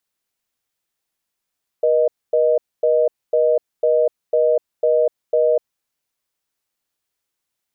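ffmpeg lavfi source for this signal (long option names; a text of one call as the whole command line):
ffmpeg -f lavfi -i "aevalsrc='0.168*(sin(2*PI*480*t)+sin(2*PI*620*t))*clip(min(mod(t,0.5),0.25-mod(t,0.5))/0.005,0,1)':duration=3.75:sample_rate=44100" out.wav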